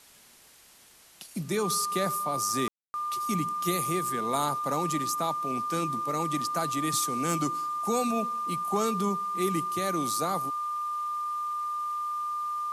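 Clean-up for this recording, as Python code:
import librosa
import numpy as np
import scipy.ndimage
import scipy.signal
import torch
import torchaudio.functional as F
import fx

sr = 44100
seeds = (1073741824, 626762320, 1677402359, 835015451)

y = fx.fix_declip(x, sr, threshold_db=-16.5)
y = fx.notch(y, sr, hz=1200.0, q=30.0)
y = fx.fix_ambience(y, sr, seeds[0], print_start_s=0.63, print_end_s=1.13, start_s=2.68, end_s=2.94)
y = fx.noise_reduce(y, sr, print_start_s=0.63, print_end_s=1.13, reduce_db=21.0)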